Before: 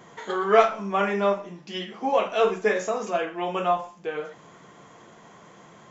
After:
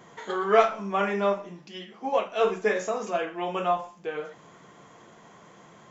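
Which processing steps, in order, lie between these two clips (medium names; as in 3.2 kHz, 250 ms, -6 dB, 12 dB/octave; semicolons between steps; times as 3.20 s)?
1.68–2.41 s: upward expansion 1.5:1, over -29 dBFS; trim -2 dB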